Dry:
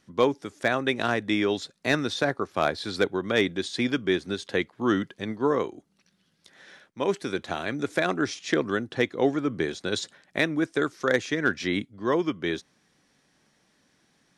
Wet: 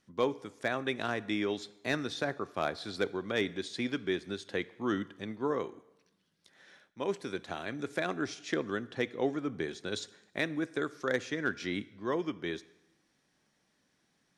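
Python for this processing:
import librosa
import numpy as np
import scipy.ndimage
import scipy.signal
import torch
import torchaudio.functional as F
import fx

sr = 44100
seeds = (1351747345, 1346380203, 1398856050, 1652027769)

y = fx.rev_plate(x, sr, seeds[0], rt60_s=0.96, hf_ratio=0.9, predelay_ms=0, drr_db=17.0)
y = y * librosa.db_to_amplitude(-8.0)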